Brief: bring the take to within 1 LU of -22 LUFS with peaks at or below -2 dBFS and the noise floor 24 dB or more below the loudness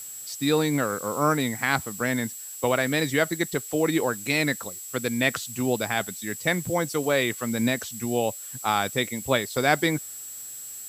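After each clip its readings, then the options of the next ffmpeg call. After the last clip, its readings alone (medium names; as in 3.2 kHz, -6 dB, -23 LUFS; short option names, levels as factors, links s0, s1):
steady tone 7.7 kHz; tone level -38 dBFS; noise floor -39 dBFS; noise floor target -50 dBFS; loudness -26.0 LUFS; peak level -6.5 dBFS; loudness target -22.0 LUFS
-> -af "bandreject=f=7700:w=30"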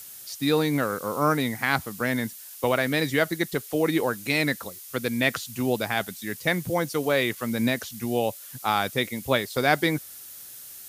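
steady tone not found; noise floor -43 dBFS; noise floor target -50 dBFS
-> -af "afftdn=nr=7:nf=-43"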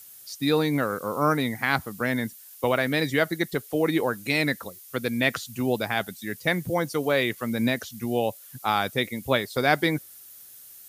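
noise floor -47 dBFS; noise floor target -50 dBFS
-> -af "afftdn=nr=6:nf=-47"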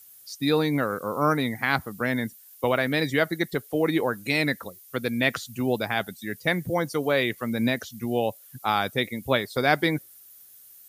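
noise floor -51 dBFS; loudness -26.0 LUFS; peak level -7.0 dBFS; loudness target -22.0 LUFS
-> -af "volume=1.58"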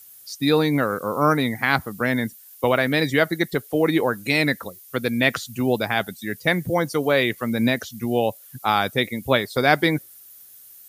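loudness -22.0 LUFS; peak level -3.0 dBFS; noise floor -47 dBFS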